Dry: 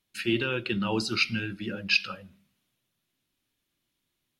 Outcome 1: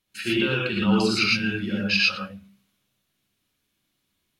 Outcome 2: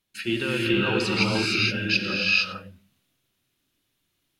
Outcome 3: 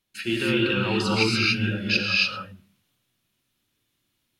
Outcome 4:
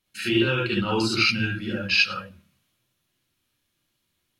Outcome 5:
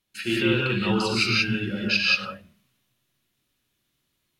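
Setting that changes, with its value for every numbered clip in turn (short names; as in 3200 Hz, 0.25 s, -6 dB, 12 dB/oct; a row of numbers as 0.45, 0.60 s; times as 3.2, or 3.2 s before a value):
non-linear reverb, gate: 140, 490, 320, 90, 210 ms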